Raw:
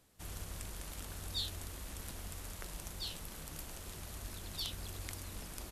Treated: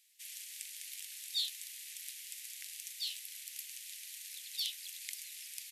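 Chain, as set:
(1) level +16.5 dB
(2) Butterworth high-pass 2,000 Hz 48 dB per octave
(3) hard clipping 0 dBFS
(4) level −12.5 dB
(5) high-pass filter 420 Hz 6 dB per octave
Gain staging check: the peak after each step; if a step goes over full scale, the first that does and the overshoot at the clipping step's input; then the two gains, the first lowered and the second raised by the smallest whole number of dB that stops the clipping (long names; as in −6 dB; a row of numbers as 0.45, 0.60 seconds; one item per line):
−3.0, −5.0, −5.0, −17.5, −17.5 dBFS
no step passes full scale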